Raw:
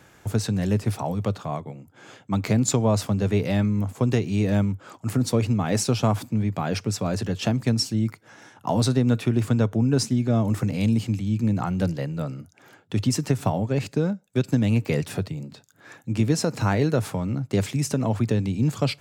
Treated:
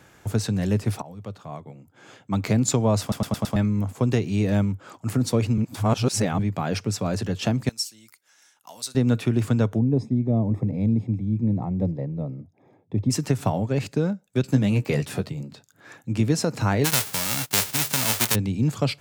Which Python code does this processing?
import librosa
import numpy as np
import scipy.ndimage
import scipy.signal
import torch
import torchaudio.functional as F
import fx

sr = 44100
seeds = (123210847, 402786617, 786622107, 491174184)

y = fx.differentiator(x, sr, at=(7.69, 8.95))
y = fx.moving_average(y, sr, points=30, at=(9.78, 13.09), fade=0.02)
y = fx.doubler(y, sr, ms=15.0, db=-7.0, at=(14.42, 15.42))
y = fx.envelope_flatten(y, sr, power=0.1, at=(16.84, 18.34), fade=0.02)
y = fx.edit(y, sr, fx.fade_in_from(start_s=1.02, length_s=1.39, floor_db=-17.0),
    fx.stutter_over(start_s=3.01, slice_s=0.11, count=5),
    fx.reverse_span(start_s=5.58, length_s=0.81), tone=tone)